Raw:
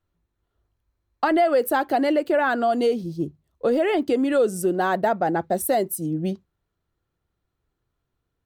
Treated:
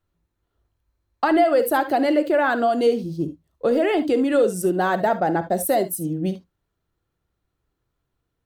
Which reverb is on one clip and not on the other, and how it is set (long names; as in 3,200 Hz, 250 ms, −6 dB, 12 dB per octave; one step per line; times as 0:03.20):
reverb whose tail is shaped and stops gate 90 ms rising, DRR 11 dB
level +1 dB